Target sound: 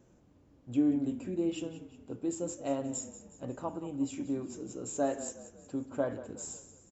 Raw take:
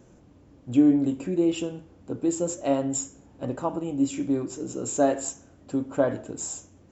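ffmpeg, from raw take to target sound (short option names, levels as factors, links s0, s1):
-filter_complex "[0:a]asplit=5[s0][s1][s2][s3][s4];[s1]adelay=182,afreqshift=-30,volume=0.2[s5];[s2]adelay=364,afreqshift=-60,volume=0.0923[s6];[s3]adelay=546,afreqshift=-90,volume=0.0422[s7];[s4]adelay=728,afreqshift=-120,volume=0.0195[s8];[s0][s5][s6][s7][s8]amix=inputs=5:normalize=0,volume=0.355"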